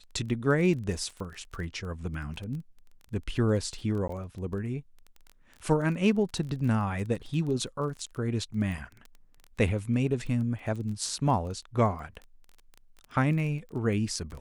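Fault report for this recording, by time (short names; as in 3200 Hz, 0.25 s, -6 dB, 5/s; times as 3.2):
crackle 20/s -36 dBFS
4.08–4.09 gap 13 ms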